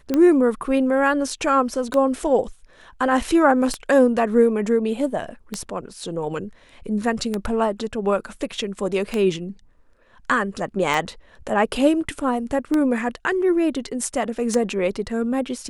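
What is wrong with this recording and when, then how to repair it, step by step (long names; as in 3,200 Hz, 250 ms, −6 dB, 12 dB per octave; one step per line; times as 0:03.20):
scratch tick 33 1/3 rpm −9 dBFS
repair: click removal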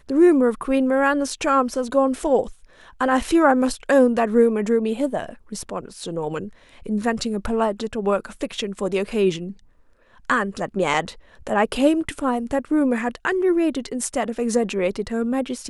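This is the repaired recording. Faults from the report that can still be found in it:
none of them is left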